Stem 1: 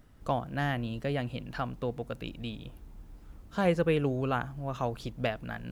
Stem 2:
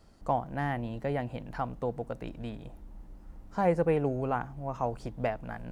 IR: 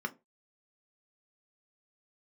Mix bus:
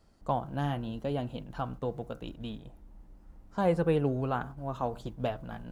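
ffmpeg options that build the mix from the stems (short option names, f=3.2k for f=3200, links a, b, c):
-filter_complex "[0:a]bandreject=f=59.62:t=h:w=4,bandreject=f=119.24:t=h:w=4,bandreject=f=178.86:t=h:w=4,bandreject=f=238.48:t=h:w=4,bandreject=f=298.1:t=h:w=4,bandreject=f=357.72:t=h:w=4,bandreject=f=417.34:t=h:w=4,bandreject=f=476.96:t=h:w=4,bandreject=f=536.58:t=h:w=4,bandreject=f=596.2:t=h:w=4,bandreject=f=655.82:t=h:w=4,bandreject=f=715.44:t=h:w=4,bandreject=f=775.06:t=h:w=4,bandreject=f=834.68:t=h:w=4,bandreject=f=894.3:t=h:w=4,bandreject=f=953.92:t=h:w=4,bandreject=f=1.01354k:t=h:w=4,bandreject=f=1.07316k:t=h:w=4,bandreject=f=1.13278k:t=h:w=4,bandreject=f=1.1924k:t=h:w=4,bandreject=f=1.25202k:t=h:w=4,bandreject=f=1.31164k:t=h:w=4,bandreject=f=1.37126k:t=h:w=4,bandreject=f=1.43088k:t=h:w=4,bandreject=f=1.4905k:t=h:w=4,bandreject=f=1.55012k:t=h:w=4,agate=range=-33dB:threshold=-38dB:ratio=3:detection=peak,flanger=delay=2.5:depth=4.6:regen=-45:speed=0.85:shape=triangular,volume=-1.5dB[a];[1:a]volume=-5dB,asplit=2[b][c];[c]apad=whole_len=251907[d];[a][d]sidechaingate=range=-33dB:threshold=-46dB:ratio=16:detection=peak[e];[e][b]amix=inputs=2:normalize=0"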